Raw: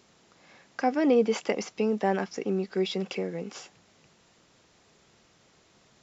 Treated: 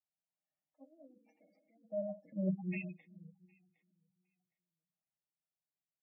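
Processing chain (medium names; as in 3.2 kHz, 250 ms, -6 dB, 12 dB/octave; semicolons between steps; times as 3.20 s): Doppler pass-by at 2.47 s, 19 m/s, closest 3.6 m; bass shelf 95 Hz -8 dB; comb 6.4 ms, depth 80%; Schroeder reverb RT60 1 s, combs from 32 ms, DRR 8 dB; transient shaper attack -4 dB, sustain +5 dB; peaking EQ 2.3 kHz -6 dB 0.99 oct; static phaser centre 1.6 kHz, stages 6; feedback delay 762 ms, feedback 18%, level -12 dB; formant shift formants -5 st; spectral gate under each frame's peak -15 dB strong; upward expansion 2.5:1, over -50 dBFS; trim +4.5 dB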